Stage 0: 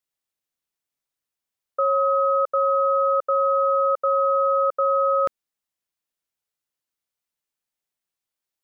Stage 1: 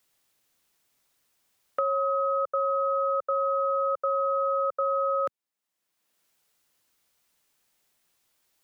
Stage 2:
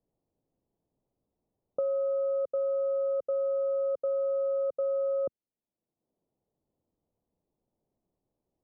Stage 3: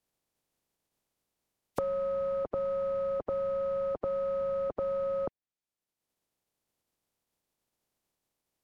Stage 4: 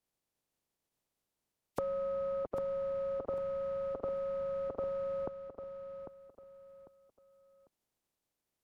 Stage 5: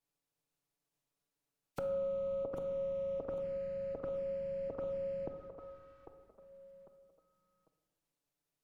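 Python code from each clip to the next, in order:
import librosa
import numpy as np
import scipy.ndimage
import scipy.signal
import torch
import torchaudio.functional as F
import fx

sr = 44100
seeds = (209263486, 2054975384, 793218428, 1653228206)

y1 = fx.band_squash(x, sr, depth_pct=70)
y1 = y1 * librosa.db_to_amplitude(-6.0)
y2 = scipy.ndimage.gaussian_filter1d(y1, 14.0, mode='constant')
y2 = y2 * librosa.db_to_amplitude(5.5)
y3 = fx.spec_flatten(y2, sr, power=0.34)
y3 = fx.env_lowpass_down(y3, sr, base_hz=900.0, full_db=-30.0)
y4 = fx.echo_feedback(y3, sr, ms=798, feedback_pct=29, wet_db=-9)
y4 = y4 * librosa.db_to_amplitude(-4.0)
y5 = fx.env_flanger(y4, sr, rest_ms=7.0, full_db=-33.0)
y5 = fx.room_shoebox(y5, sr, seeds[0], volume_m3=770.0, walls='mixed', distance_m=0.64)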